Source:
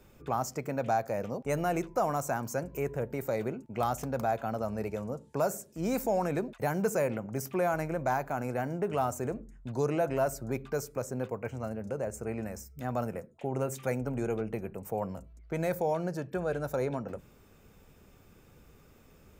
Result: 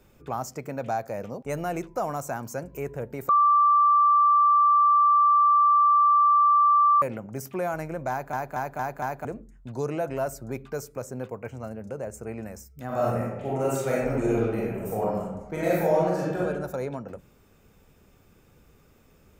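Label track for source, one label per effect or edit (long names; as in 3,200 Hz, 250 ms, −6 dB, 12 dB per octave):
3.290000	7.020000	beep over 1,170 Hz −15.5 dBFS
8.100000	8.100000	stutter in place 0.23 s, 5 plays
12.860000	16.400000	thrown reverb, RT60 1.1 s, DRR −7 dB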